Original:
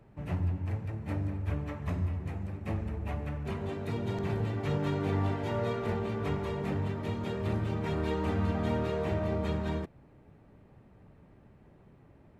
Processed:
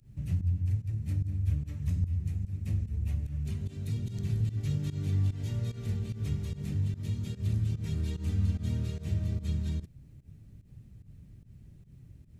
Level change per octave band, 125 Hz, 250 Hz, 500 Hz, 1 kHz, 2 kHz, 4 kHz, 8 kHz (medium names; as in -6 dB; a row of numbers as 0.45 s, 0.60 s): +3.5 dB, -4.5 dB, -16.0 dB, under -20 dB, -12.0 dB, -3.5 dB, no reading